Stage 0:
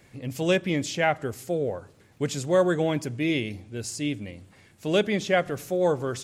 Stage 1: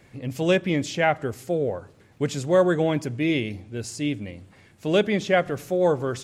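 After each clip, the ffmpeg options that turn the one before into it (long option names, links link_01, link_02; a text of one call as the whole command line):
ffmpeg -i in.wav -af "highshelf=frequency=4500:gain=-6,volume=2.5dB" out.wav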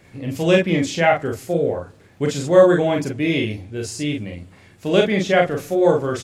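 ffmpeg -i in.wav -af "aecho=1:1:36|47:0.631|0.531,volume=2.5dB" out.wav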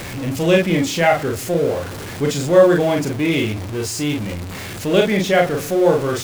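ffmpeg -i in.wav -af "aeval=exprs='val(0)+0.5*0.0562*sgn(val(0))':channel_layout=same" out.wav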